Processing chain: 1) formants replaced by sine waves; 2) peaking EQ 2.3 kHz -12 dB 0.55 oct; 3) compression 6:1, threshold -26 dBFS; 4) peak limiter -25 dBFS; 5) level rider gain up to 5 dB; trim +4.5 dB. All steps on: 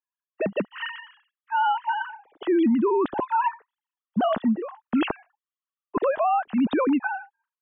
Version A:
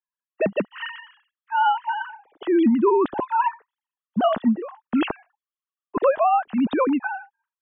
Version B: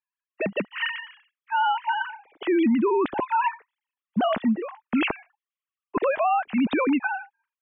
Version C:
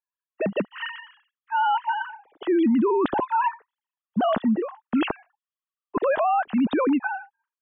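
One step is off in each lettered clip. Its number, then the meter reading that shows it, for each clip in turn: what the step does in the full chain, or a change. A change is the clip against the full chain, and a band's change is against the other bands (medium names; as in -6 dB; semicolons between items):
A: 4, crest factor change +4.5 dB; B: 2, 2 kHz band +3.5 dB; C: 3, mean gain reduction 4.5 dB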